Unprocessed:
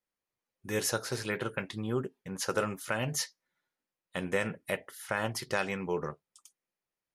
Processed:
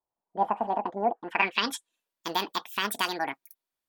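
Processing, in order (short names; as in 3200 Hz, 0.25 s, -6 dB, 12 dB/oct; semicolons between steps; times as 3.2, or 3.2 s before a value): low-pass sweep 460 Hz -> 8500 Hz, 2–3.8; wide varispeed 1.84×; dynamic EQ 1700 Hz, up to +5 dB, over -42 dBFS, Q 1; gain +1 dB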